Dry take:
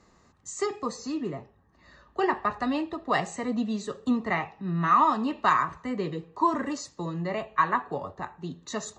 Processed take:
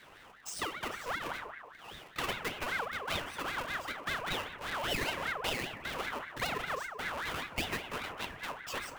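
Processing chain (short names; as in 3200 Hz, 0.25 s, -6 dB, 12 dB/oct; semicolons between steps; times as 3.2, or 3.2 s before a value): half-waves squared off; bell 1900 Hz +9.5 dB 0.71 oct; FDN reverb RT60 0.62 s, low-frequency decay 1.45×, high-frequency decay 0.35×, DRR 3 dB; compressor 2.5:1, threshold -38 dBFS, peak gain reduction 18.5 dB; ring modulator with a swept carrier 1300 Hz, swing 45%, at 5.1 Hz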